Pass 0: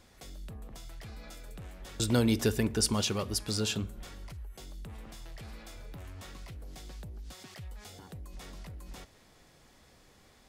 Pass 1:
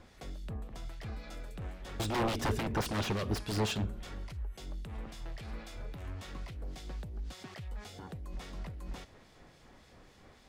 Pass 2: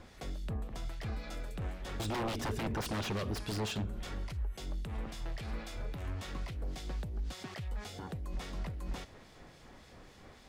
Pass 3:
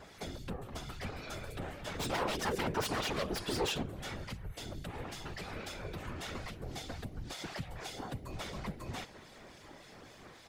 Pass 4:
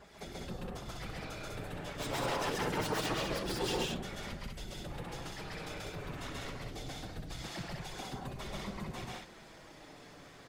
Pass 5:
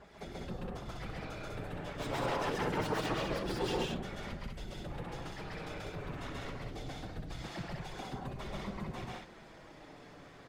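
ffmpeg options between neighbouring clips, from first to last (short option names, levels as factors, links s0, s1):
-filter_complex "[0:a]aeval=exprs='0.0355*(abs(mod(val(0)/0.0355+3,4)-2)-1)':c=same,acrossover=split=2200[s0][s1];[s0]aeval=exprs='val(0)*(1-0.5/2+0.5/2*cos(2*PI*3.6*n/s))':c=same[s2];[s1]aeval=exprs='val(0)*(1-0.5/2-0.5/2*cos(2*PI*3.6*n/s))':c=same[s3];[s2][s3]amix=inputs=2:normalize=0,lowpass=f=3100:p=1,volume=1.88"
-af "alimiter=level_in=2.51:limit=0.0631:level=0:latency=1:release=110,volume=0.398,volume=1.41"
-af "lowshelf=f=140:g=-9,aecho=1:1:6.8:0.65,afftfilt=real='hypot(re,im)*cos(2*PI*random(0))':imag='hypot(re,im)*sin(2*PI*random(1))':win_size=512:overlap=0.75,volume=2.51"
-filter_complex "[0:a]flanger=delay=4.9:depth=2.4:regen=-46:speed=0.24:shape=triangular,asplit=2[s0][s1];[s1]aecho=0:1:99.13|134.1|198.3:0.282|1|0.708[s2];[s0][s2]amix=inputs=2:normalize=0"
-af "highshelf=f=3900:g=-10,volume=1.12"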